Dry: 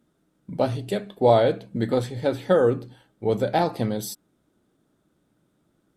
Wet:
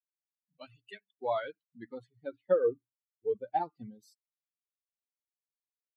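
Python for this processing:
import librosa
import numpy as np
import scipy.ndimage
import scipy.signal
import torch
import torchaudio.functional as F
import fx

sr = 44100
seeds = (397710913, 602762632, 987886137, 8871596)

y = fx.bin_expand(x, sr, power=3.0)
y = fx.filter_sweep_bandpass(y, sr, from_hz=2000.0, to_hz=650.0, start_s=0.9, end_s=2.66, q=1.7)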